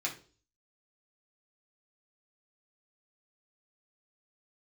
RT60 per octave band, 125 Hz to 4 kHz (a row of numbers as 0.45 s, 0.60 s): 0.60 s, 0.50 s, 0.45 s, 0.35 s, 0.30 s, 0.40 s